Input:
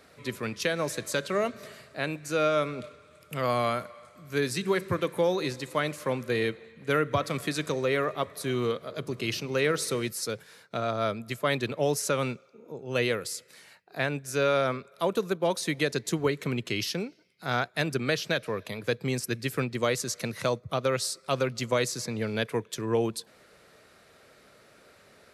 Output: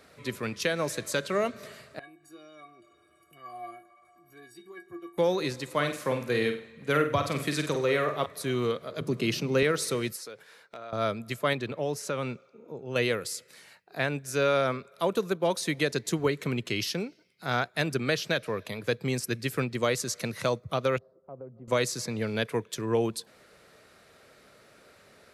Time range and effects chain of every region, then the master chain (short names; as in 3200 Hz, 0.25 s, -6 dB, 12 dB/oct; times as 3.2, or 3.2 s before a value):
1.99–5.18 bell 4700 Hz -8.5 dB 2.4 oct + metallic resonator 340 Hz, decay 0.31 s, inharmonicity 0.03 + upward compressor, threshold -49 dBFS
5.75–8.26 HPF 55 Hz + flutter echo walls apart 8.3 m, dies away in 0.39 s
9.01–9.63 HPF 140 Hz 24 dB/oct + low shelf 280 Hz +11 dB
10.16–10.93 tone controls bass -13 dB, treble -6 dB + compressor, threshold -38 dBFS + overloaded stage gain 32 dB
11.53–12.96 compressor 1.5:1, threshold -32 dBFS + high shelf 5200 Hz -8.5 dB
20.98–21.68 ladder low-pass 870 Hz, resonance 25% + compressor 2:1, threshold -47 dBFS
whole clip: dry